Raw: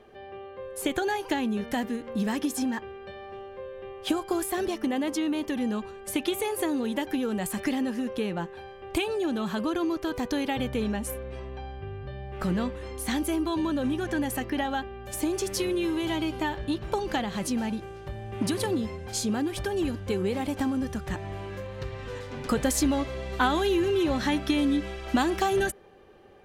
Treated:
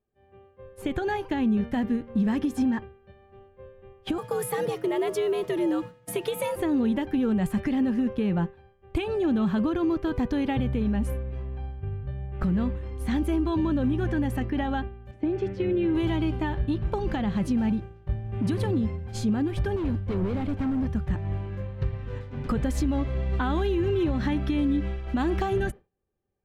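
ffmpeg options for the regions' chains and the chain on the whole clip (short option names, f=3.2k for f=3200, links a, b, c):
-filter_complex "[0:a]asettb=1/sr,asplit=3[a][b][c];[a]atrim=end=4.184[d];[b]atrim=start=4.18:end=6.56,asetpts=PTS-STARTPTS,afade=t=in:d=0.004:c=qsin,afade=t=out:st=2.376:d=0.004:c=qsin,equalizer=f=11k:w=0.83:g=12,afreqshift=100,acrusher=bits=7:mix=0:aa=0.5[e];[c]atrim=start=6.556[f];[d][e]acrossfade=d=0.004:c1=hsin:c2=qsin[g];[g][f]acrossfade=d=0.004:c1=qsin:c2=hsin,asettb=1/sr,asplit=3[h][i][j];[h]atrim=end=15.114[k];[i]atrim=start=15.11:end=15.95,asetpts=PTS-STARTPTS,afade=t=in:d=0.004:c=qsin,afade=t=out:st=0.836:d=0.004:c=qsin,highpass=100,lowpass=2.5k,equalizer=f=1.1k:w=5.1:g=-12.5[l];[j]atrim=start=15.946[m];[k][l]acrossfade=d=0.004:c1=hsin:c2=qsin[n];[n][m]acrossfade=d=0.004:c1=qsin:c2=hsin,asettb=1/sr,asplit=3[o][p][q];[o]atrim=end=19.764[r];[p]atrim=start=19.76:end=20.89,asetpts=PTS-STARTPTS,afade=t=in:d=0.004:c=qsin,afade=t=out:st=1.126:d=0.004:c=qsin,acrossover=split=5800[s][t];[t]acompressor=threshold=-56dB:ratio=4:attack=1:release=60[u];[s][u]amix=inputs=2:normalize=0,asoftclip=type=hard:threshold=-29dB[v];[q]atrim=start=20.886[w];[r][v]acrossfade=d=0.004:c1=hsin:c2=qsin[x];[x][w]acrossfade=d=0.004:c1=qsin:c2=hsin,agate=range=-33dB:threshold=-31dB:ratio=3:detection=peak,bass=f=250:g=13,treble=f=4k:g=-12,alimiter=limit=-17.5dB:level=0:latency=1:release=151"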